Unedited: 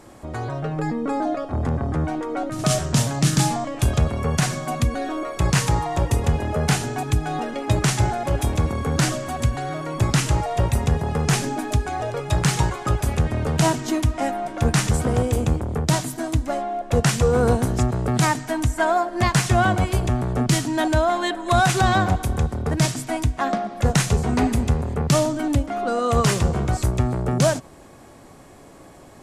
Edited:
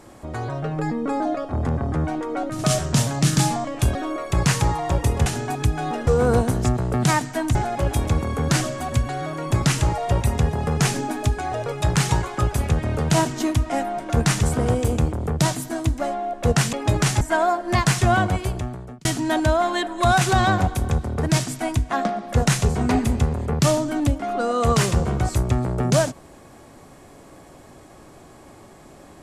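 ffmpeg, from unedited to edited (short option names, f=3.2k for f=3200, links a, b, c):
-filter_complex "[0:a]asplit=8[a][b][c][d][e][f][g][h];[a]atrim=end=3.952[i];[b]atrim=start=5.018:end=6.332[j];[c]atrim=start=6.738:end=7.552[k];[d]atrim=start=17.208:end=18.692[l];[e]atrim=start=8.028:end=17.212[m];[f]atrim=start=7.548:end=8.032[n];[g]atrim=start=18.688:end=20.53,asetpts=PTS-STARTPTS,afade=t=out:st=0.952:d=0.89[o];[h]atrim=start=20.53,asetpts=PTS-STARTPTS,afade=t=in:d=0.004:c=hsin[p];[i][j]acrossfade=d=0.004:c1=hsin:c2=hsin[q];[q][k]acrossfade=d=0.004:c1=hsin:c2=hsin[r];[r][l]acrossfade=d=0.004:c1=hsin:c2=hsin[s];[s][m]acrossfade=d=0.004:c1=hsin:c2=hsin[t];[t][n]acrossfade=d=0.004:c1=hsin:c2=hsin[u];[o][p]concat=n=2:v=0:a=1[v];[u][v]acrossfade=d=0.004:c1=hsin:c2=hsin"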